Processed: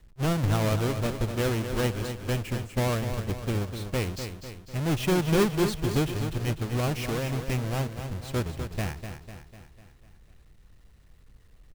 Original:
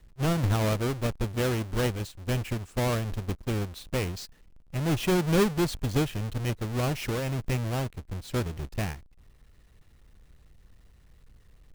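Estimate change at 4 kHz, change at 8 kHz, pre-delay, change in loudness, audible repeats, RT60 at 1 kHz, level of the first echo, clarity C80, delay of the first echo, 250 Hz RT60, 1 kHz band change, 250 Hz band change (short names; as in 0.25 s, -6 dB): +1.0 dB, +1.0 dB, none, +0.5 dB, 5, none, -8.5 dB, none, 0.249 s, none, +1.0 dB, +0.5 dB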